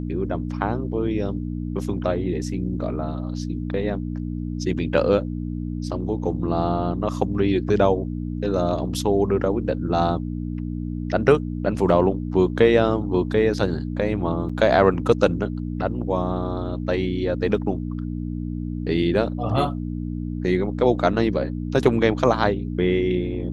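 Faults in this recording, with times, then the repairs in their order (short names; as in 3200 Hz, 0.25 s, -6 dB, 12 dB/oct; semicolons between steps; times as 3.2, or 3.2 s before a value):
hum 60 Hz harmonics 5 -28 dBFS
14.49–14.5 gap 5.4 ms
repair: de-hum 60 Hz, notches 5; interpolate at 14.49, 5.4 ms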